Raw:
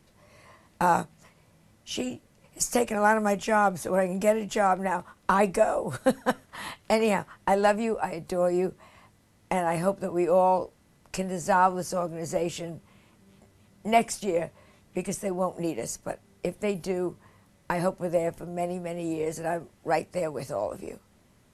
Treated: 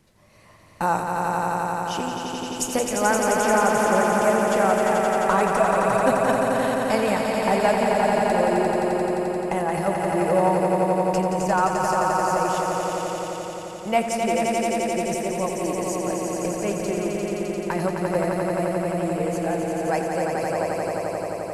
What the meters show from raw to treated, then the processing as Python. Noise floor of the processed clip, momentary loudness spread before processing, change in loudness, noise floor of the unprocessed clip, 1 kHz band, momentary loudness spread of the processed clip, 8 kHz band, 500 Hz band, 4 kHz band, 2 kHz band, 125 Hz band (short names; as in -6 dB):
-33 dBFS, 12 LU, +5.0 dB, -62 dBFS, +5.5 dB, 7 LU, +6.0 dB, +5.5 dB, +6.0 dB, +6.0 dB, +6.0 dB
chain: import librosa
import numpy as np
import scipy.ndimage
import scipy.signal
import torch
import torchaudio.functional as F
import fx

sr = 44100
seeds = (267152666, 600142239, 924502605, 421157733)

y = fx.echo_swell(x, sr, ms=87, loudest=5, wet_db=-5.0)